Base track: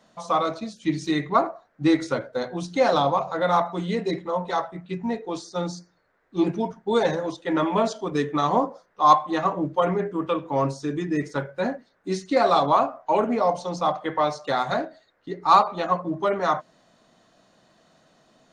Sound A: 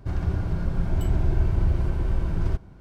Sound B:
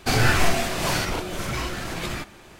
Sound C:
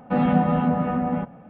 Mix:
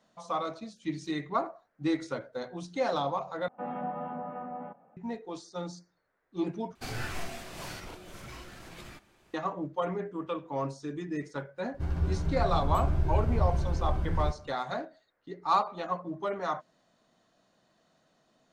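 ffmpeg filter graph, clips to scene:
-filter_complex "[0:a]volume=0.335[s0];[3:a]bandpass=f=800:t=q:w=1:csg=0[s1];[1:a]asplit=2[s2][s3];[s3]adelay=13,volume=0.708[s4];[s2][s4]amix=inputs=2:normalize=0[s5];[s0]asplit=3[s6][s7][s8];[s6]atrim=end=3.484[s9];[s1]atrim=end=1.49,asetpts=PTS-STARTPTS,volume=0.299[s10];[s7]atrim=start=4.966:end=6.754[s11];[2:a]atrim=end=2.59,asetpts=PTS-STARTPTS,volume=0.141[s12];[s8]atrim=start=9.336[s13];[s5]atrim=end=2.8,asetpts=PTS-STARTPTS,volume=0.473,afade=t=in:d=0.004:c=hsin,afade=t=out:st=2.796:d=0.004:c=hsin,adelay=11740[s14];[s9][s10]acrossfade=d=0.004:c1=hsin:c2=hsin[s15];[s15][s11]acrossfade=d=0.004:c1=hsin:c2=hsin[s16];[s16][s12]acrossfade=d=0.004:c1=hsin:c2=hsin[s17];[s17][s13]acrossfade=d=0.004:c1=hsin:c2=hsin[s18];[s18][s14]amix=inputs=2:normalize=0"

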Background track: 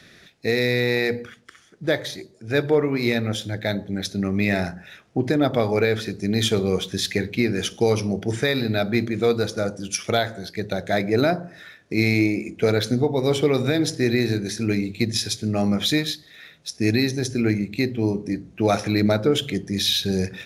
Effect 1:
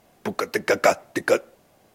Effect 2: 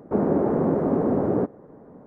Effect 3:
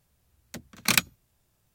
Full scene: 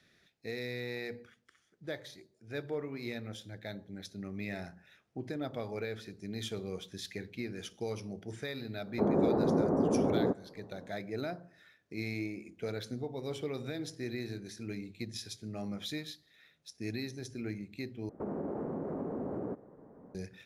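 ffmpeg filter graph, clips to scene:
-filter_complex "[2:a]asplit=2[s0][s1];[0:a]volume=0.126[s2];[s0]lowpass=1800[s3];[s1]acompressor=threshold=0.0562:ratio=6:attack=3.2:release=140:knee=1:detection=peak[s4];[s2]asplit=2[s5][s6];[s5]atrim=end=18.094[s7];[s4]atrim=end=2.06,asetpts=PTS-STARTPTS,volume=0.376[s8];[s6]atrim=start=20.146[s9];[s3]atrim=end=2.06,asetpts=PTS-STARTPTS,volume=0.473,afade=t=in:d=0.004:c=hsin,afade=t=out:st=2.056:d=0.004:c=hsin,adelay=8870[s10];[s7][s8]acrossfade=d=0.004:c1=hsin:c2=hsin[s11];[s11][s9]acrossfade=d=0.004:c1=hsin:c2=hsin[s12];[s12][s10]amix=inputs=2:normalize=0"

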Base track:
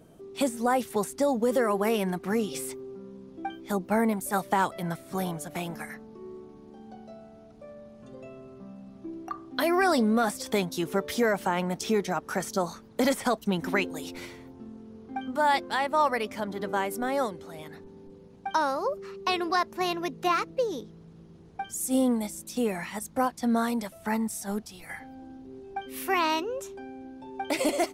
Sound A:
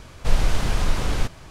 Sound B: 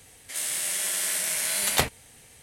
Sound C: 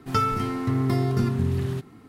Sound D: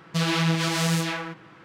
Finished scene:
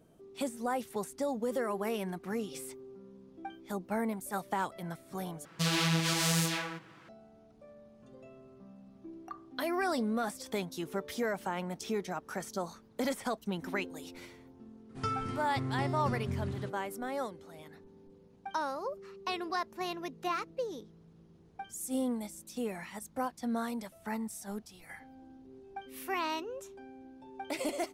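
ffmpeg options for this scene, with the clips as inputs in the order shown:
-filter_complex "[0:a]volume=0.376[s0];[4:a]aemphasis=mode=production:type=cd[s1];[3:a]aresample=22050,aresample=44100[s2];[s0]asplit=2[s3][s4];[s3]atrim=end=5.454[s5];[s1]atrim=end=1.64,asetpts=PTS-STARTPTS,volume=0.473[s6];[s4]atrim=start=7.086[s7];[s2]atrim=end=2.08,asetpts=PTS-STARTPTS,volume=0.266,afade=t=in:d=0.004:c=hsin,afade=t=out:st=2.076:d=0.004:c=hsin,adelay=14890[s8];[s5][s6]acrossfade=d=0.004:c1=hsin:c2=hsin[s9];[s9][s7]acrossfade=d=0.004:c1=hsin:c2=hsin[s10];[s10][s8]amix=inputs=2:normalize=0"

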